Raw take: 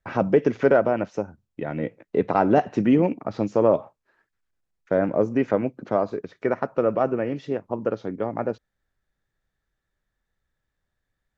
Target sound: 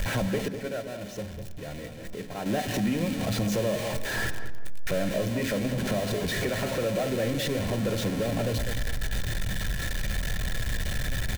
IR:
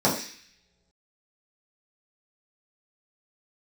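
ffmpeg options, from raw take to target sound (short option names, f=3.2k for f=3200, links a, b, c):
-filter_complex "[0:a]aeval=exprs='val(0)+0.5*0.0668*sgn(val(0))':c=same,asuperstop=centerf=1200:order=8:qfactor=6.6,bass=f=250:g=10,treble=f=4k:g=-2,aecho=1:1:1.7:0.32,acrossover=split=1800[a][b];[a]acompressor=threshold=-26dB:ratio=10[c];[c][b]amix=inputs=2:normalize=0,asettb=1/sr,asplit=3[d][e][f];[d]atrim=end=0.484[g];[e]atrim=start=0.48:end=2.46,asetpts=PTS-STARTPTS,afade=t=in:d=0.004:c=qsin,afade=t=out:st=1.976:d=0.004:c=qsin,agate=range=-33dB:threshold=-20dB:ratio=3:detection=peak[h];[f]atrim=start=2.456[i];[g][h]acrossfade=d=0.004:c1=hsin:c2=qsin[j];[j][i]acrossfade=d=0.004:c1=qsin:c2=hsin,asoftclip=type=tanh:threshold=-20dB,asplit=2[k][l];[l]adelay=201,lowpass=f=1.4k:p=1,volume=-8dB,asplit=2[m][n];[n]adelay=201,lowpass=f=1.4k:p=1,volume=0.37,asplit=2[o][p];[p]adelay=201,lowpass=f=1.4k:p=1,volume=0.37,asplit=2[q][r];[r]adelay=201,lowpass=f=1.4k:p=1,volume=0.37[s];[k][m][o][q][s]amix=inputs=5:normalize=0,asplit=2[t][u];[1:a]atrim=start_sample=2205[v];[u][v]afir=irnorm=-1:irlink=0,volume=-28dB[w];[t][w]amix=inputs=2:normalize=0"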